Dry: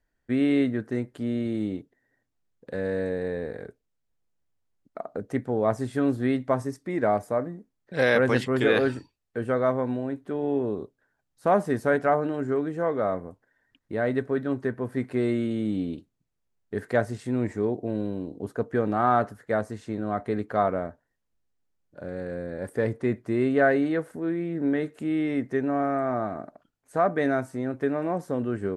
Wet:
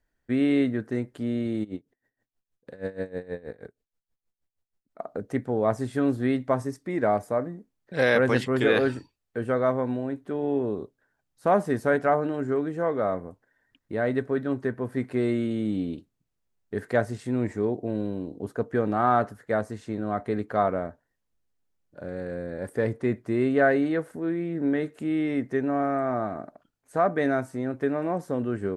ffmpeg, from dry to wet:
ffmpeg -i in.wav -filter_complex "[0:a]asplit=3[link_01][link_02][link_03];[link_01]afade=type=out:start_time=1.63:duration=0.02[link_04];[link_02]aeval=exprs='val(0)*pow(10,-20*(0.5-0.5*cos(2*PI*6.3*n/s))/20)':channel_layout=same,afade=type=in:start_time=1.63:duration=0.02,afade=type=out:start_time=4.98:duration=0.02[link_05];[link_03]afade=type=in:start_time=4.98:duration=0.02[link_06];[link_04][link_05][link_06]amix=inputs=3:normalize=0" out.wav

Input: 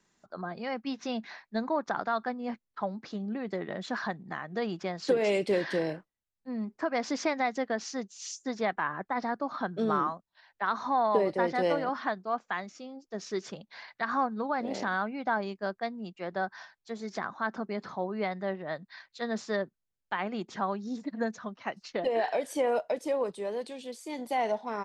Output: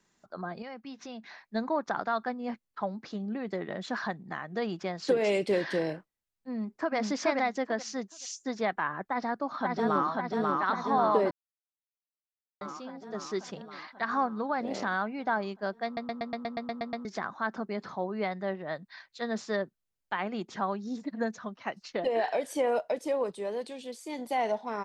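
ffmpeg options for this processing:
ffmpeg -i in.wav -filter_complex "[0:a]asettb=1/sr,asplit=3[link_01][link_02][link_03];[link_01]atrim=end=0.624[link_04];[link_02]atrim=start=0.62:end=1.47,asetpts=PTS-STARTPTS,afade=type=in:duration=0.004:curve=qsin,afade=type=out:start_time=0.846:duration=0.004:curve=qsin,acompressor=threshold=-46dB:ratio=2:attack=3.2:release=140:knee=1:detection=peak[link_05];[link_03]atrim=start=1.466[link_06];[link_04][link_05]acrossfade=duration=0.004:curve1=hsin:curve2=qsin[link_07];[link_07][link_06]acrossfade=duration=0.004:curve1=qsin:curve2=hsin,asplit=2[link_08][link_09];[link_09]afade=type=in:start_time=6.49:duration=0.01,afade=type=out:start_time=6.96:duration=0.01,aecho=0:1:430|860|1290:0.944061|0.188812|0.0377624[link_10];[link_08][link_10]amix=inputs=2:normalize=0,asplit=2[link_11][link_12];[link_12]afade=type=in:start_time=9.1:duration=0.01,afade=type=out:start_time=10.09:duration=0.01,aecho=0:1:540|1080|1620|2160|2700|3240|3780|4320|4860|5400|5940|6480:0.841395|0.588977|0.412284|0.288599|0.202019|0.141413|0.0989893|0.0692925|0.0485048|0.0339533|0.0237673|0.0166371[link_13];[link_11][link_13]amix=inputs=2:normalize=0,asplit=13[link_14][link_15][link_16][link_17][link_18][link_19][link_20][link_21][link_22][link_23][link_24][link_25][link_26];[link_14]atrim=end=11.31,asetpts=PTS-STARTPTS,afade=type=out:start_time=11.306:duration=0.004:curve=hsin[link_27];[link_15]atrim=start=11.31:end=12.61,asetpts=PTS-STARTPTS,volume=0[link_28];[link_16]atrim=start=12.61:end=15.972,asetpts=PTS-STARTPTS,afade=type=in:duration=0.004:curve=hsin[link_29];[link_17]atrim=start=15.848:end=15.972[link_30];[link_18]atrim=start=15.848:end=15.972[link_31];[link_19]atrim=start=15.848:end=15.972[link_32];[link_20]atrim=start=15.848:end=15.972[link_33];[link_21]atrim=start=15.848:end=15.972[link_34];[link_22]atrim=start=15.848:end=15.972[link_35];[link_23]atrim=start=15.848:end=15.972[link_36];[link_24]atrim=start=15.848:end=15.972[link_37];[link_25]atrim=start=15.848:end=15.972[link_38];[link_26]atrim=start=17.048[link_39];[link_27][link_28][link_29]concat=n=3:v=0:a=1[link_40];[link_40][link_30]acrossfade=duration=0.004:curve1=hsin:curve2=hsin[link_41];[link_41][link_31]acrossfade=duration=0.004:curve1=hsin:curve2=hsin[link_42];[link_42][link_32]acrossfade=duration=0.004:curve1=hsin:curve2=hsin[link_43];[link_43][link_33]acrossfade=duration=0.004:curve1=hsin:curve2=hsin[link_44];[link_44][link_34]acrossfade=duration=0.004:curve1=hsin:curve2=hsin[link_45];[link_45][link_35]acrossfade=duration=0.004:curve1=hsin:curve2=hsin[link_46];[link_46][link_36]acrossfade=duration=0.004:curve1=hsin:curve2=hsin[link_47];[link_47][link_37]acrossfade=duration=0.004:curve1=hsin:curve2=hsin[link_48];[link_48][link_38]acrossfade=duration=0.004:curve1=hsin:curve2=hsin[link_49];[link_49][link_39]acrossfade=duration=0.004:curve1=hsin:curve2=hsin" out.wav

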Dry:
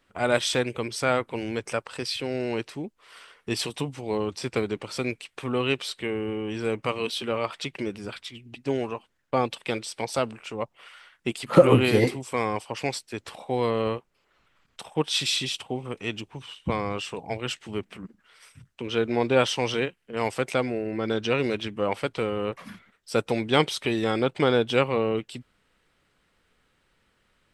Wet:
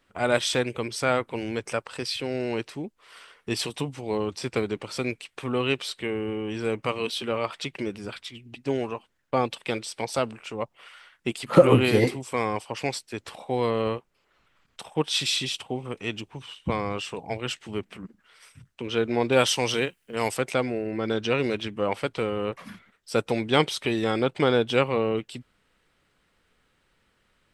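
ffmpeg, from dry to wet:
ffmpeg -i in.wav -filter_complex "[0:a]asettb=1/sr,asplit=3[link_01][link_02][link_03];[link_01]atrim=end=19.324[link_04];[link_02]atrim=start=19.32:end=20.37,asetpts=PTS-STARTPTS,afade=type=in:duration=0.004:curve=qsin,afade=type=out:start_time=1.046:duration=0.004:curve=qsin,aemphasis=mode=production:type=50kf[link_05];[link_03]atrim=start=20.366[link_06];[link_04][link_05]acrossfade=duration=0.004:curve1=hsin:curve2=qsin[link_07];[link_07][link_06]acrossfade=duration=0.004:curve1=qsin:curve2=hsin" out.wav

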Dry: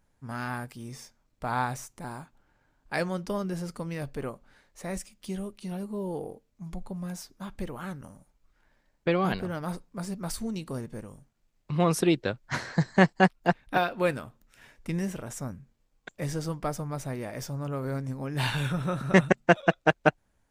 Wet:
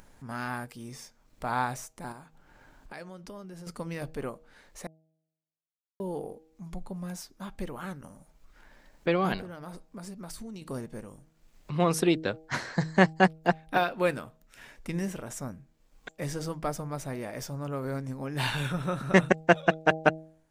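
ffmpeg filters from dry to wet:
ffmpeg -i in.wav -filter_complex "[0:a]asettb=1/sr,asplit=3[link_01][link_02][link_03];[link_01]atrim=end=2.124[link_04];[link_02]atrim=start=2.12:end=3.67,asetpts=PTS-STARTPTS,afade=type=in:duration=0.004:curve=qsin,afade=type=out:start_time=1.546:duration=0.004:curve=qsin,acompressor=threshold=-44dB:ratio=3:attack=3.2:release=140:knee=1:detection=peak[link_05];[link_03]atrim=start=3.666[link_06];[link_04][link_05]acrossfade=duration=0.004:curve1=hsin:curve2=qsin[link_07];[link_07][link_06]acrossfade=duration=0.004:curve1=qsin:curve2=hsin,asettb=1/sr,asplit=3[link_08][link_09][link_10];[link_08]atrim=end=9.414[link_11];[link_09]atrim=start=9.41:end=10.62,asetpts=PTS-STARTPTS,afade=type=in:duration=0.004:curve=qsin,afade=type=out:start_time=1.206:duration=0.004:curve=qsin,acompressor=threshold=-37dB:ratio=6:attack=3.2:release=140:knee=1:detection=peak[link_12];[link_10]atrim=start=10.616[link_13];[link_11][link_12]acrossfade=duration=0.004:curve1=hsin:curve2=qsin[link_14];[link_14][link_13]acrossfade=duration=0.004:curve1=qsin:curve2=hsin,asplit=3[link_15][link_16][link_17];[link_15]atrim=end=4.87,asetpts=PTS-STARTPTS,afade=type=out:start_time=4.866:duration=0.004:curve=hsin[link_18];[link_16]atrim=start=4.87:end=6,asetpts=PTS-STARTPTS,volume=0[link_19];[link_17]atrim=start=6,asetpts=PTS-STARTPTS,afade=type=in:duration=0.004:curve=hsin[link_20];[link_18][link_19][link_20]concat=n=3:v=0:a=1,equalizer=frequency=88:width_type=o:width=1.5:gain=-5,bandreject=frequency=159:width_type=h:width=4,bandreject=frequency=318:width_type=h:width=4,bandreject=frequency=477:width_type=h:width=4,bandreject=frequency=636:width_type=h:width=4,bandreject=frequency=795:width_type=h:width=4,acompressor=mode=upward:threshold=-42dB:ratio=2.5" out.wav

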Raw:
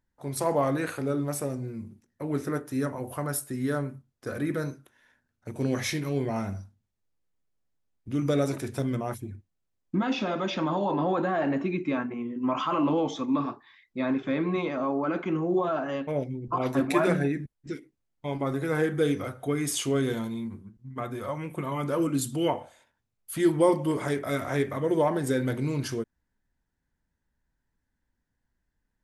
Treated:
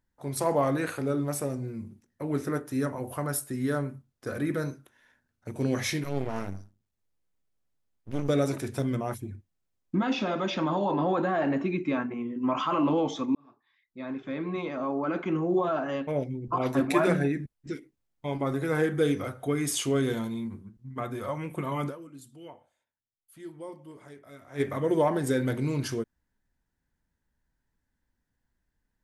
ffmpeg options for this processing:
ffmpeg -i in.wav -filter_complex "[0:a]asettb=1/sr,asplit=3[link_01][link_02][link_03];[link_01]atrim=end=6.044[link_04];[link_02]atrim=start=6.04:end=8.29,asetpts=PTS-STARTPTS,afade=type=in:duration=0.004:curve=qsin,afade=type=out:start_time=2.246:duration=0.004:curve=qsin,aeval=exprs='max(val(0),0)':channel_layout=same[link_05];[link_03]atrim=start=8.286[link_06];[link_04][link_05]acrossfade=duration=0.004:curve1=hsin:curve2=qsin[link_07];[link_07][link_06]acrossfade=duration=0.004:curve1=qsin:curve2=hsin,asplit=4[link_08][link_09][link_10][link_11];[link_08]atrim=end=13.35,asetpts=PTS-STARTPTS,afade=type=out:start_time=13.346:duration=0.004:curve=hsin[link_12];[link_09]atrim=start=13.35:end=22.18,asetpts=PTS-STARTPTS,afade=type=in:duration=2,afade=type=out:start_time=8.53:duration=0.3:curve=exp:silence=0.1[link_13];[link_10]atrim=start=22.18:end=24.31,asetpts=PTS-STARTPTS,volume=-20dB[link_14];[link_11]atrim=start=24.31,asetpts=PTS-STARTPTS,afade=type=in:duration=0.3:curve=exp:silence=0.1[link_15];[link_12][link_13][link_14][link_15]concat=n=4:v=0:a=1" out.wav

